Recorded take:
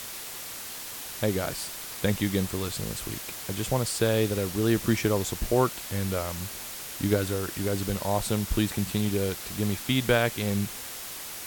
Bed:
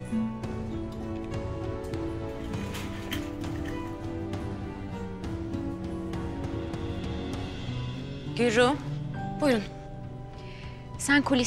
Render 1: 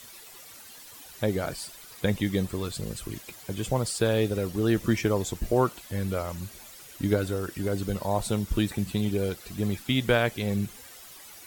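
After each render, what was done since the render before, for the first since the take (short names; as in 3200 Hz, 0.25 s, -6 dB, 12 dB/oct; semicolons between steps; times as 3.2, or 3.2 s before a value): denoiser 12 dB, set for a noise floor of -39 dBFS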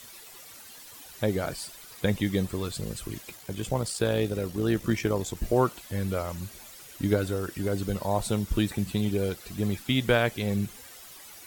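3.37–5.37 AM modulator 57 Hz, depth 25%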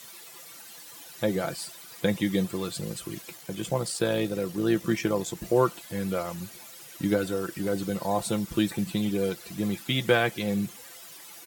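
HPF 120 Hz 12 dB/oct; comb 5.9 ms, depth 51%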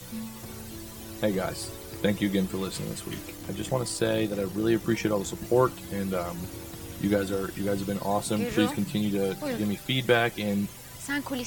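add bed -8 dB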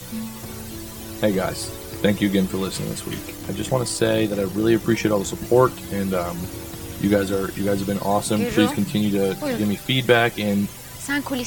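gain +6.5 dB; limiter -3 dBFS, peak gain reduction 1 dB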